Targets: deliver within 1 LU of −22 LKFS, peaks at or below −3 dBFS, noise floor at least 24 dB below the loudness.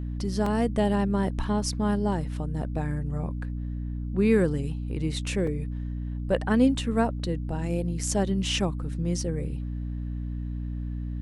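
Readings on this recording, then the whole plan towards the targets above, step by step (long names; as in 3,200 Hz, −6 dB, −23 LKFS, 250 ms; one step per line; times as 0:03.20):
number of dropouts 3; longest dropout 3.6 ms; mains hum 60 Hz; hum harmonics up to 300 Hz; level of the hum −29 dBFS; integrated loudness −28.0 LKFS; sample peak −9.5 dBFS; target loudness −22.0 LKFS
→ repair the gap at 0:00.46/0:05.47/0:07.99, 3.6 ms
hum removal 60 Hz, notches 5
level +6 dB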